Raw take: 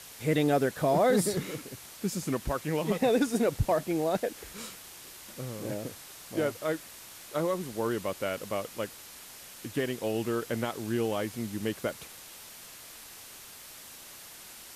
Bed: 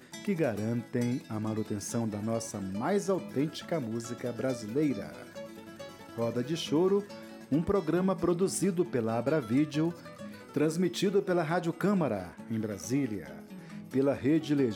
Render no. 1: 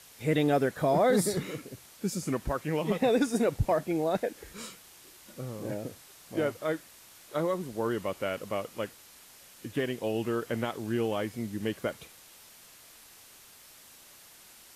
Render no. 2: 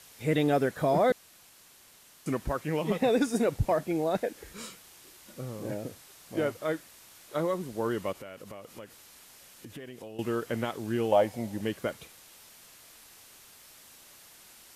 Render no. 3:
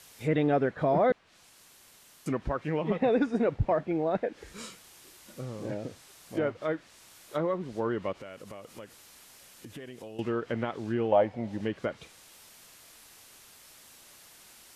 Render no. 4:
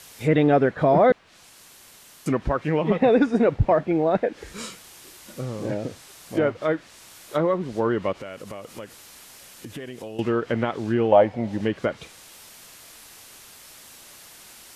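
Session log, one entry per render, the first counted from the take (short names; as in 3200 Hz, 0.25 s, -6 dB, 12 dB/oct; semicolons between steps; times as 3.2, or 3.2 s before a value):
noise print and reduce 6 dB
1.12–2.26 room tone; 8.12–10.19 compressor 5:1, threshold -41 dBFS; 11.12–11.61 band shelf 690 Hz +12.5 dB 1 oct
treble ducked by the level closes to 2400 Hz, closed at -26.5 dBFS
gain +7.5 dB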